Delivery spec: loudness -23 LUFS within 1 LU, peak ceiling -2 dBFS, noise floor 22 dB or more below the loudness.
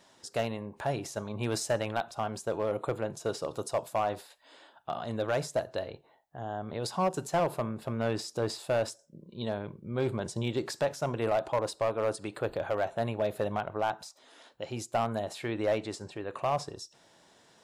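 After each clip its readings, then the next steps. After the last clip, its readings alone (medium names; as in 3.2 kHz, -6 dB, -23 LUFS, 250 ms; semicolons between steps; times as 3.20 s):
clipped samples 0.9%; clipping level -21.5 dBFS; loudness -33.0 LUFS; peak level -21.5 dBFS; loudness target -23.0 LUFS
-> clip repair -21.5 dBFS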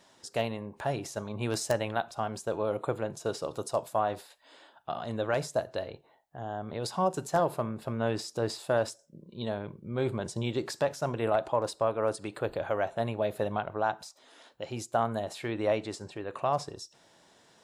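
clipped samples 0.0%; loudness -32.5 LUFS; peak level -12.5 dBFS; loudness target -23.0 LUFS
-> trim +9.5 dB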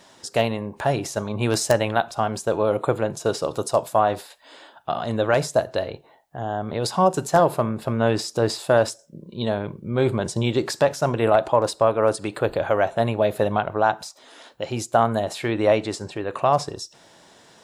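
loudness -23.0 LUFS; peak level -3.0 dBFS; noise floor -53 dBFS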